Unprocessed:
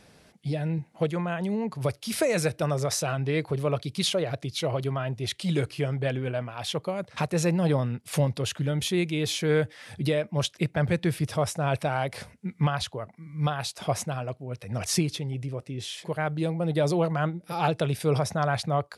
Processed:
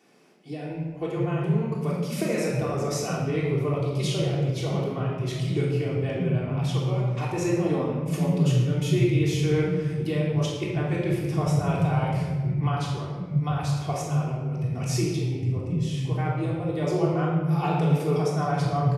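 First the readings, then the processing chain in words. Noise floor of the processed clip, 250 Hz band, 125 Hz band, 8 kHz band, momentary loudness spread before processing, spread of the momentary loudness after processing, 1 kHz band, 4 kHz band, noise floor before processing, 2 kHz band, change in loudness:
-34 dBFS, +3.5 dB, +4.5 dB, -4.0 dB, 8 LU, 5 LU, 0.0 dB, -4.5 dB, -58 dBFS, -2.5 dB, +2.0 dB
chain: fifteen-band graphic EQ 630 Hz -6 dB, 1.6 kHz -8 dB, 4 kHz -10 dB, 10 kHz -9 dB; bands offset in time highs, lows 700 ms, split 200 Hz; simulated room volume 1300 m³, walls mixed, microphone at 3.4 m; trim -3 dB

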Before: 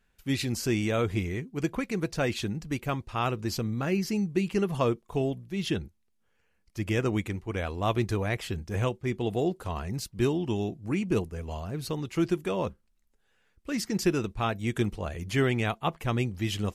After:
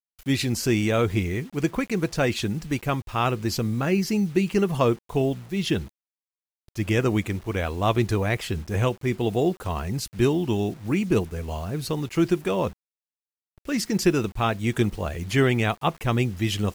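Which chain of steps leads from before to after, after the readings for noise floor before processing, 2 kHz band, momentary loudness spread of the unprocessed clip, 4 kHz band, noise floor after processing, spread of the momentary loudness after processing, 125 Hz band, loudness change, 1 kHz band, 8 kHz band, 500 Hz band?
-71 dBFS, +5.0 dB, 7 LU, +5.0 dB, under -85 dBFS, 7 LU, +5.0 dB, +5.0 dB, +5.0 dB, +5.0 dB, +5.0 dB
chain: bit crusher 9-bit; trim +5 dB

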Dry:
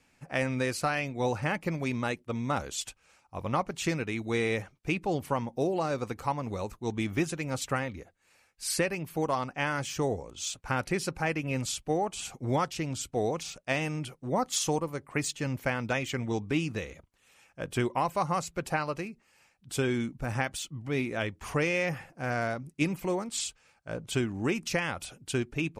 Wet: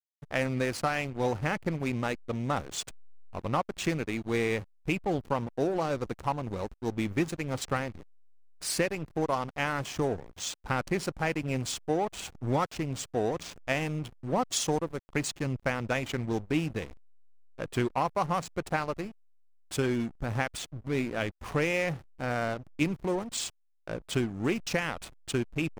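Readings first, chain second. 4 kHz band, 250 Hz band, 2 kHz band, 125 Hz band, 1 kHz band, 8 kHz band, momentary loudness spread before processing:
-0.5 dB, +0.5 dB, -1.0 dB, 0.0 dB, 0.0 dB, -1.5 dB, 7 LU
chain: in parallel at -2 dB: compression 10:1, threshold -42 dBFS, peak gain reduction 19.5 dB; on the sum: hysteresis with a dead band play -31 dBFS

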